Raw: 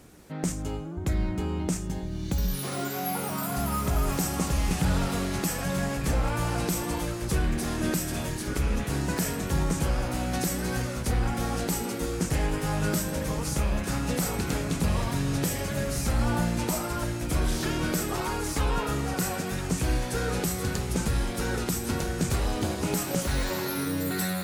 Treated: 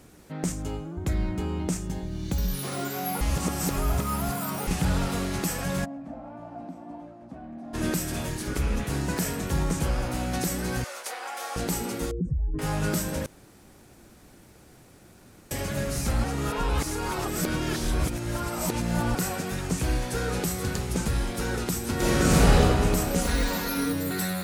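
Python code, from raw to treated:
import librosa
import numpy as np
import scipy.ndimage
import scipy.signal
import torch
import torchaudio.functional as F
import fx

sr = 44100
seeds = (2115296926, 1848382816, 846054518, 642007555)

y = fx.double_bandpass(x, sr, hz=420.0, octaves=1.3, at=(5.84, 7.73), fade=0.02)
y = fx.highpass(y, sr, hz=570.0, slope=24, at=(10.84, 11.56))
y = fx.spec_expand(y, sr, power=2.9, at=(12.11, 12.59))
y = fx.reverb_throw(y, sr, start_s=21.95, length_s=0.61, rt60_s=2.4, drr_db=-10.0)
y = fx.comb(y, sr, ms=4.2, depth=0.8, at=(23.15, 23.93))
y = fx.edit(y, sr, fx.reverse_span(start_s=3.21, length_s=1.46),
    fx.room_tone_fill(start_s=13.26, length_s=2.25),
    fx.reverse_span(start_s=16.24, length_s=2.91), tone=tone)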